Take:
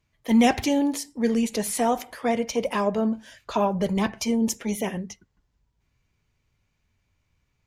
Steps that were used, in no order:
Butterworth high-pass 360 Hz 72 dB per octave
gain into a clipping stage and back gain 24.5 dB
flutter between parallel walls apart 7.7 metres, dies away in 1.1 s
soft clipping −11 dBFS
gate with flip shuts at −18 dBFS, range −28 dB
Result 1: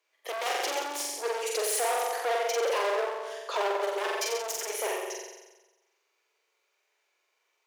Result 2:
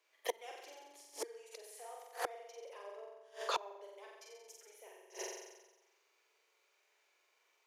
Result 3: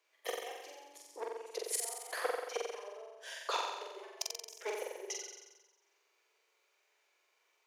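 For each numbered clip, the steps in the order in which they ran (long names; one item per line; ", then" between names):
soft clipping, then flutter between parallel walls, then gain into a clipping stage and back, then gate with flip, then Butterworth high-pass
soft clipping, then flutter between parallel walls, then gate with flip, then Butterworth high-pass, then gain into a clipping stage and back
gate with flip, then gain into a clipping stage and back, then Butterworth high-pass, then soft clipping, then flutter between parallel walls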